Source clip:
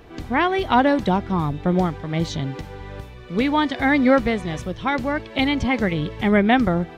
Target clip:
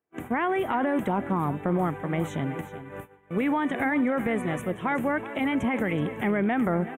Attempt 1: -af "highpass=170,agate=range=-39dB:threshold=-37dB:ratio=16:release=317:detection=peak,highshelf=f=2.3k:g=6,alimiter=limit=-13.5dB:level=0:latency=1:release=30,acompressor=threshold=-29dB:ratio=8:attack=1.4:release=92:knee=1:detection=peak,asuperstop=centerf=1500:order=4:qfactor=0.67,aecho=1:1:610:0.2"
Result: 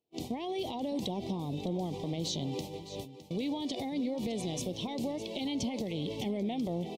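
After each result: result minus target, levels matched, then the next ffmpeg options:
4000 Hz band +14.5 dB; echo 0.235 s late; compressor: peak gain reduction +8.5 dB
-af "highpass=170,agate=range=-39dB:threshold=-37dB:ratio=16:release=317:detection=peak,highshelf=f=2.3k:g=6,alimiter=limit=-13.5dB:level=0:latency=1:release=30,acompressor=threshold=-29dB:ratio=8:attack=1.4:release=92:knee=1:detection=peak,asuperstop=centerf=4700:order=4:qfactor=0.67,aecho=1:1:610:0.2"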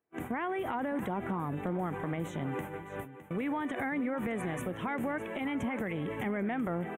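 echo 0.235 s late; compressor: peak gain reduction +8.5 dB
-af "highpass=170,agate=range=-39dB:threshold=-37dB:ratio=16:release=317:detection=peak,highshelf=f=2.3k:g=6,alimiter=limit=-13.5dB:level=0:latency=1:release=30,acompressor=threshold=-29dB:ratio=8:attack=1.4:release=92:knee=1:detection=peak,asuperstop=centerf=4700:order=4:qfactor=0.67,aecho=1:1:375:0.2"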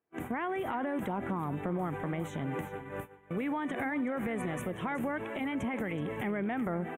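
compressor: peak gain reduction +8.5 dB
-af "highpass=170,agate=range=-39dB:threshold=-37dB:ratio=16:release=317:detection=peak,highshelf=f=2.3k:g=6,alimiter=limit=-13.5dB:level=0:latency=1:release=30,acompressor=threshold=-19.5dB:ratio=8:attack=1.4:release=92:knee=1:detection=peak,asuperstop=centerf=4700:order=4:qfactor=0.67,aecho=1:1:375:0.2"

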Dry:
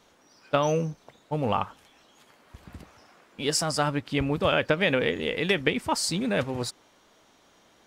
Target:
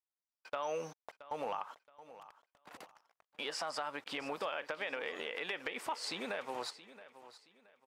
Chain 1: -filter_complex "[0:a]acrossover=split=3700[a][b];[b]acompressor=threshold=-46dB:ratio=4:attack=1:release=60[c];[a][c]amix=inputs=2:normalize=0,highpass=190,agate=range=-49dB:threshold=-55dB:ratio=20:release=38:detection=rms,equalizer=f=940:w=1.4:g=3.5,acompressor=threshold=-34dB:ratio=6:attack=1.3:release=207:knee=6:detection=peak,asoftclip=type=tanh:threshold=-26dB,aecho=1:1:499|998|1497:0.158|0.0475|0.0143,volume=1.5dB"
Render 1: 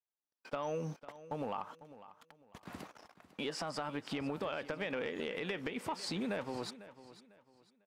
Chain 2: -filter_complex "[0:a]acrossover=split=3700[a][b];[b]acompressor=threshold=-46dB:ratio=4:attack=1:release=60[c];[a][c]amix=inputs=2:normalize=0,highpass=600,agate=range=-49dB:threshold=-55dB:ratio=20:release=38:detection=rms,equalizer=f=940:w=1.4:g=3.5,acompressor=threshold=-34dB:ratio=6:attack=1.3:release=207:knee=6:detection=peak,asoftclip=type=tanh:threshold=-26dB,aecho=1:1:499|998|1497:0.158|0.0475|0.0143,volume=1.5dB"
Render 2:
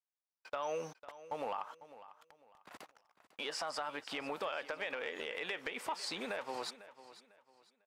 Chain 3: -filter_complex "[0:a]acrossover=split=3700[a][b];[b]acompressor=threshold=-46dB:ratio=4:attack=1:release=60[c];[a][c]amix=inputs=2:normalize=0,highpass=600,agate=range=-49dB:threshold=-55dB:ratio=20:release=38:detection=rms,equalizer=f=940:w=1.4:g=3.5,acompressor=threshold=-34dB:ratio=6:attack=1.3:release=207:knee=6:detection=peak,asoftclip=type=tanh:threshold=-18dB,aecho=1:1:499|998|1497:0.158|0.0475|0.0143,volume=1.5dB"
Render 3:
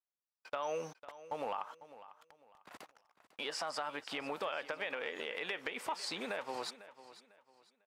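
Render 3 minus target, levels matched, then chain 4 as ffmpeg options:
echo 0.174 s early
-filter_complex "[0:a]acrossover=split=3700[a][b];[b]acompressor=threshold=-46dB:ratio=4:attack=1:release=60[c];[a][c]amix=inputs=2:normalize=0,highpass=600,agate=range=-49dB:threshold=-55dB:ratio=20:release=38:detection=rms,equalizer=f=940:w=1.4:g=3.5,acompressor=threshold=-34dB:ratio=6:attack=1.3:release=207:knee=6:detection=peak,asoftclip=type=tanh:threshold=-18dB,aecho=1:1:673|1346|2019:0.158|0.0475|0.0143,volume=1.5dB"

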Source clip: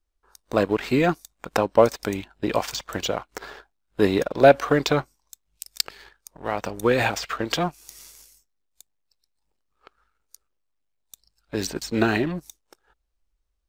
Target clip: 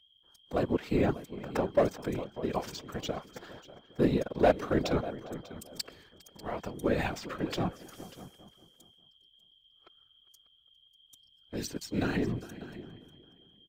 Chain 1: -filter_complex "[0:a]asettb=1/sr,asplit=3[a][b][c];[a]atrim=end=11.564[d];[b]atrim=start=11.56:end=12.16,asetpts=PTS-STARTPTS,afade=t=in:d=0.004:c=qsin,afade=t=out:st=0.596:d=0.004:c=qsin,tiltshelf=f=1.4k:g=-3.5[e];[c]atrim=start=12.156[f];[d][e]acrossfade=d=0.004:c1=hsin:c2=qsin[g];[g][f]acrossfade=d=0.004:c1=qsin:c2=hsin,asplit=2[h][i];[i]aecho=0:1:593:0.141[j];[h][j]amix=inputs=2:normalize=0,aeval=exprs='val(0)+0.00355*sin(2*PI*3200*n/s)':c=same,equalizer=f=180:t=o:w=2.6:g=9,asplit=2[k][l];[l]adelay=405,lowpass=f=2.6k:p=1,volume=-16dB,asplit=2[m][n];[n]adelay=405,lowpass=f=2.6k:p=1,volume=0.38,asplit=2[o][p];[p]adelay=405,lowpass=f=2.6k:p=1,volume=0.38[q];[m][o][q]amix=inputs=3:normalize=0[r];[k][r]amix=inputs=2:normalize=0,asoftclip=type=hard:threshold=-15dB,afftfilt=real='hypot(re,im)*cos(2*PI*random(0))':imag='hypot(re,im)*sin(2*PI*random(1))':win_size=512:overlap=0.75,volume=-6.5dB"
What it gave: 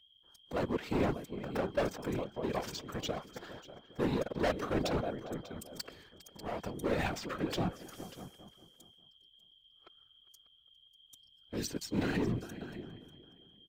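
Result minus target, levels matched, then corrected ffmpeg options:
hard clip: distortion +14 dB
-filter_complex "[0:a]asettb=1/sr,asplit=3[a][b][c];[a]atrim=end=11.564[d];[b]atrim=start=11.56:end=12.16,asetpts=PTS-STARTPTS,afade=t=in:d=0.004:c=qsin,afade=t=out:st=0.596:d=0.004:c=qsin,tiltshelf=f=1.4k:g=-3.5[e];[c]atrim=start=12.156[f];[d][e]acrossfade=d=0.004:c1=hsin:c2=qsin[g];[g][f]acrossfade=d=0.004:c1=qsin:c2=hsin,asplit=2[h][i];[i]aecho=0:1:593:0.141[j];[h][j]amix=inputs=2:normalize=0,aeval=exprs='val(0)+0.00355*sin(2*PI*3200*n/s)':c=same,equalizer=f=180:t=o:w=2.6:g=9,asplit=2[k][l];[l]adelay=405,lowpass=f=2.6k:p=1,volume=-16dB,asplit=2[m][n];[n]adelay=405,lowpass=f=2.6k:p=1,volume=0.38,asplit=2[o][p];[p]adelay=405,lowpass=f=2.6k:p=1,volume=0.38[q];[m][o][q]amix=inputs=3:normalize=0[r];[k][r]amix=inputs=2:normalize=0,asoftclip=type=hard:threshold=-3.5dB,afftfilt=real='hypot(re,im)*cos(2*PI*random(0))':imag='hypot(re,im)*sin(2*PI*random(1))':win_size=512:overlap=0.75,volume=-6.5dB"

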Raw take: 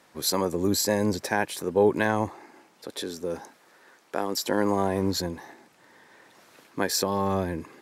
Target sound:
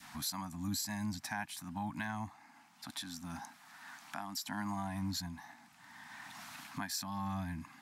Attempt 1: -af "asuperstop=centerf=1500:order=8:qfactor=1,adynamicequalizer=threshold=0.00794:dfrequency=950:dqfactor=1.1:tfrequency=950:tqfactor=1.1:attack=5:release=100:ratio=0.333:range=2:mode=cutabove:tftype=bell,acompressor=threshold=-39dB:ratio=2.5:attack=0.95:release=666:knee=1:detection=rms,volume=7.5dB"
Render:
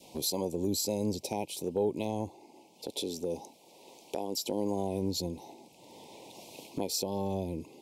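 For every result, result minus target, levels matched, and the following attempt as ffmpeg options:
2000 Hz band -16.5 dB; compressor: peak gain reduction -4 dB
-af "asuperstop=centerf=440:order=8:qfactor=1,adynamicequalizer=threshold=0.00794:dfrequency=950:dqfactor=1.1:tfrequency=950:tqfactor=1.1:attack=5:release=100:ratio=0.333:range=2:mode=cutabove:tftype=bell,acompressor=threshold=-39dB:ratio=2.5:attack=0.95:release=666:knee=1:detection=rms,volume=7.5dB"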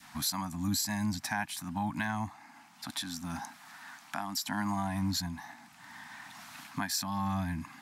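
compressor: peak gain reduction -6 dB
-af "asuperstop=centerf=440:order=8:qfactor=1,adynamicequalizer=threshold=0.00794:dfrequency=950:dqfactor=1.1:tfrequency=950:tqfactor=1.1:attack=5:release=100:ratio=0.333:range=2:mode=cutabove:tftype=bell,acompressor=threshold=-49dB:ratio=2.5:attack=0.95:release=666:knee=1:detection=rms,volume=7.5dB"

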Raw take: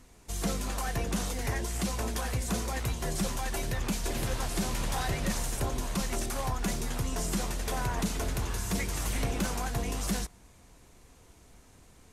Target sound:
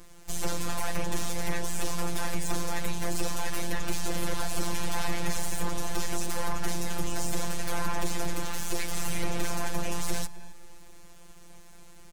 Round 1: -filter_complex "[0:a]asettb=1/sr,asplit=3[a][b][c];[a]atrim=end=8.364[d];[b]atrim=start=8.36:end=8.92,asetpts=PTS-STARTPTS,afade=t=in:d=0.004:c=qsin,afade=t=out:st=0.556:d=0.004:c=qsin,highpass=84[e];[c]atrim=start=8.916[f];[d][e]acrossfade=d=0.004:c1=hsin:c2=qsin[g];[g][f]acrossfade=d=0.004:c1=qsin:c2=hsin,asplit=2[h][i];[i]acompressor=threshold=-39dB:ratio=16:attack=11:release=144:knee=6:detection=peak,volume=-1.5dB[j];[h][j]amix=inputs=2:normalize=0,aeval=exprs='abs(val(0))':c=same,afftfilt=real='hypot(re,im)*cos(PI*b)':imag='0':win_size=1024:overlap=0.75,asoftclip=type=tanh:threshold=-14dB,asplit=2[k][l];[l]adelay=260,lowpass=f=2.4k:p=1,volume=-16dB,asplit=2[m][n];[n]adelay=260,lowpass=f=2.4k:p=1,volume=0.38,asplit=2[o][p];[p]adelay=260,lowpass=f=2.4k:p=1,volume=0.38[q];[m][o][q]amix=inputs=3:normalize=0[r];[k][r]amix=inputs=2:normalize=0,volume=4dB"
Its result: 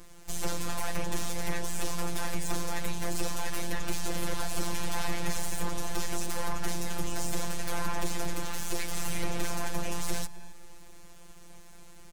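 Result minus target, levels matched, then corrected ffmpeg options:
compressor: peak gain reduction +9 dB
-filter_complex "[0:a]asettb=1/sr,asplit=3[a][b][c];[a]atrim=end=8.364[d];[b]atrim=start=8.36:end=8.92,asetpts=PTS-STARTPTS,afade=t=in:d=0.004:c=qsin,afade=t=out:st=0.556:d=0.004:c=qsin,highpass=84[e];[c]atrim=start=8.916[f];[d][e]acrossfade=d=0.004:c1=hsin:c2=qsin[g];[g][f]acrossfade=d=0.004:c1=qsin:c2=hsin,asplit=2[h][i];[i]acompressor=threshold=-29.5dB:ratio=16:attack=11:release=144:knee=6:detection=peak,volume=-1.5dB[j];[h][j]amix=inputs=2:normalize=0,aeval=exprs='abs(val(0))':c=same,afftfilt=real='hypot(re,im)*cos(PI*b)':imag='0':win_size=1024:overlap=0.75,asoftclip=type=tanh:threshold=-14dB,asplit=2[k][l];[l]adelay=260,lowpass=f=2.4k:p=1,volume=-16dB,asplit=2[m][n];[n]adelay=260,lowpass=f=2.4k:p=1,volume=0.38,asplit=2[o][p];[p]adelay=260,lowpass=f=2.4k:p=1,volume=0.38[q];[m][o][q]amix=inputs=3:normalize=0[r];[k][r]amix=inputs=2:normalize=0,volume=4dB"

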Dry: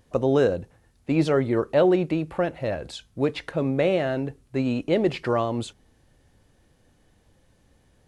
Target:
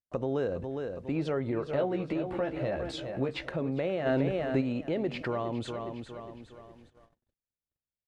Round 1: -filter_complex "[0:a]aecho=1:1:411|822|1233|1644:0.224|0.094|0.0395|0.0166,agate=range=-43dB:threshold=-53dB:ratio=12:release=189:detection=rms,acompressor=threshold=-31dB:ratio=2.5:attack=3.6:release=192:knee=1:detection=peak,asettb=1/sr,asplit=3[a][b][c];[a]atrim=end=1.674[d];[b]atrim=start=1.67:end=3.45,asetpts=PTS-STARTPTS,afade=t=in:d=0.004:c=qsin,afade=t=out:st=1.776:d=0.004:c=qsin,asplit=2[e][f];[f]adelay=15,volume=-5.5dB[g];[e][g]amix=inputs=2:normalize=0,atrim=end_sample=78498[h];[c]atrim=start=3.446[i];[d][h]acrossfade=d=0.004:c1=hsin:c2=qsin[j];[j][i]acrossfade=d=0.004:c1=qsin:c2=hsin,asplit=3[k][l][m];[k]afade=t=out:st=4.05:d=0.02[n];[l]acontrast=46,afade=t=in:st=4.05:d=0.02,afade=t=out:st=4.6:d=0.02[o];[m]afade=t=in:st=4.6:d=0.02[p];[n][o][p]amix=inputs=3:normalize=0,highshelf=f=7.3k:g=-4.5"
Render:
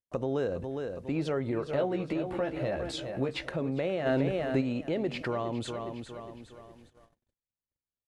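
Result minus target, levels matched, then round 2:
8000 Hz band +5.5 dB
-filter_complex "[0:a]aecho=1:1:411|822|1233|1644:0.224|0.094|0.0395|0.0166,agate=range=-43dB:threshold=-53dB:ratio=12:release=189:detection=rms,acompressor=threshold=-31dB:ratio=2.5:attack=3.6:release=192:knee=1:detection=peak,asettb=1/sr,asplit=3[a][b][c];[a]atrim=end=1.674[d];[b]atrim=start=1.67:end=3.45,asetpts=PTS-STARTPTS,afade=t=in:d=0.004:c=qsin,afade=t=out:st=1.776:d=0.004:c=qsin,asplit=2[e][f];[f]adelay=15,volume=-5.5dB[g];[e][g]amix=inputs=2:normalize=0,atrim=end_sample=78498[h];[c]atrim=start=3.446[i];[d][h]acrossfade=d=0.004:c1=hsin:c2=qsin[j];[j][i]acrossfade=d=0.004:c1=qsin:c2=hsin,asplit=3[k][l][m];[k]afade=t=out:st=4.05:d=0.02[n];[l]acontrast=46,afade=t=in:st=4.05:d=0.02,afade=t=out:st=4.6:d=0.02[o];[m]afade=t=in:st=4.6:d=0.02[p];[n][o][p]amix=inputs=3:normalize=0,highshelf=f=7.3k:g=-16"

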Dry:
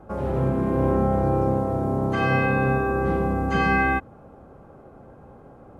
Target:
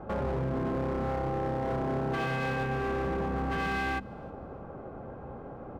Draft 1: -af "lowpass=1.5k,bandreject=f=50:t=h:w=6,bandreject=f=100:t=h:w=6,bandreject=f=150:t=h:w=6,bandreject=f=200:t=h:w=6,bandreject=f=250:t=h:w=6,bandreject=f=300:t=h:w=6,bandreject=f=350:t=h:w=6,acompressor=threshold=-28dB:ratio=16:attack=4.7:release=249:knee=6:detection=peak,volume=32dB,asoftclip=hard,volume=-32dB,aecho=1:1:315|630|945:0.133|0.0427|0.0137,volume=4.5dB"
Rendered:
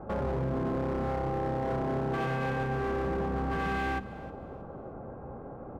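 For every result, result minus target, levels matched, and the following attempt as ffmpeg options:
echo-to-direct +9 dB; 4000 Hz band -3.0 dB
-af "lowpass=1.5k,bandreject=f=50:t=h:w=6,bandreject=f=100:t=h:w=6,bandreject=f=150:t=h:w=6,bandreject=f=200:t=h:w=6,bandreject=f=250:t=h:w=6,bandreject=f=300:t=h:w=6,bandreject=f=350:t=h:w=6,acompressor=threshold=-28dB:ratio=16:attack=4.7:release=249:knee=6:detection=peak,volume=32dB,asoftclip=hard,volume=-32dB,aecho=1:1:315|630:0.0473|0.0151,volume=4.5dB"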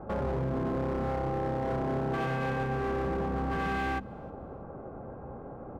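4000 Hz band -3.0 dB
-af "lowpass=3.2k,bandreject=f=50:t=h:w=6,bandreject=f=100:t=h:w=6,bandreject=f=150:t=h:w=6,bandreject=f=200:t=h:w=6,bandreject=f=250:t=h:w=6,bandreject=f=300:t=h:w=6,bandreject=f=350:t=h:w=6,acompressor=threshold=-28dB:ratio=16:attack=4.7:release=249:knee=6:detection=peak,volume=32dB,asoftclip=hard,volume=-32dB,aecho=1:1:315|630:0.0473|0.0151,volume=4.5dB"

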